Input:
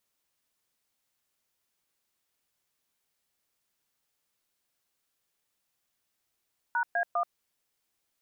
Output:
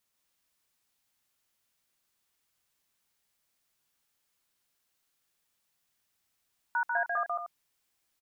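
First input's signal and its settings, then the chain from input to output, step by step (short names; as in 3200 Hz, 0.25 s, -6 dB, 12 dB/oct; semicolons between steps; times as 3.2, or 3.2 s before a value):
DTMF "#A1", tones 81 ms, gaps 0.12 s, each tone -27.5 dBFS
bell 450 Hz -3.5 dB 1.3 oct; loudspeakers at several distances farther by 49 m -3 dB, 79 m -10 dB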